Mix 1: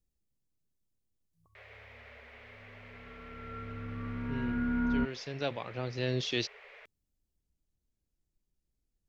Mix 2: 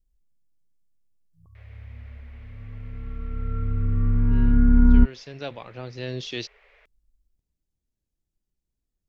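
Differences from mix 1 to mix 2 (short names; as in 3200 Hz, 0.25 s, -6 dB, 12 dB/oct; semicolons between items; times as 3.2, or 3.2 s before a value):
first sound -5.0 dB; second sound: remove HPF 720 Hz 6 dB/oct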